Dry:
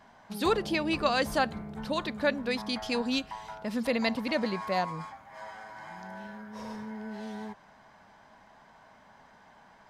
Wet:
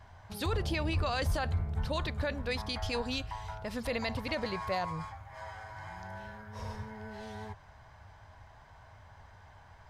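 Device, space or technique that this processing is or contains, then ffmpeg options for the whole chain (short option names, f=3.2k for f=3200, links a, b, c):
car stereo with a boomy subwoofer: -af "lowshelf=f=140:t=q:w=3:g=14,alimiter=limit=-22dB:level=0:latency=1:release=14,volume=-1dB"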